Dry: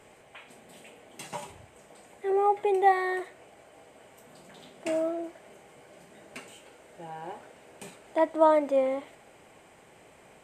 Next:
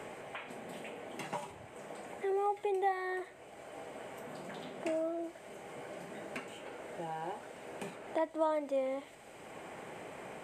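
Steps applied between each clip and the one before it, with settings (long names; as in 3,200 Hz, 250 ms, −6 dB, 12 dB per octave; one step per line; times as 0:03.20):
multiband upward and downward compressor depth 70%
level −5 dB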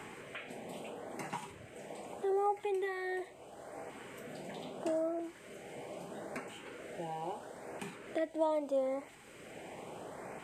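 auto-filter notch saw up 0.77 Hz 520–3,700 Hz
level +1 dB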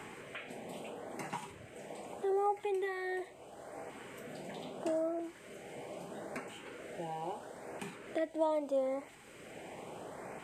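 no processing that can be heard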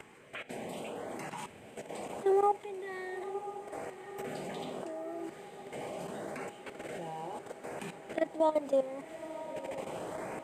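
output level in coarse steps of 16 dB
feedback delay with all-pass diffusion 998 ms, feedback 70%, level −12 dB
level +7 dB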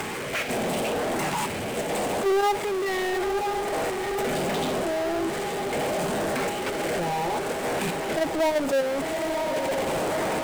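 power curve on the samples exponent 0.35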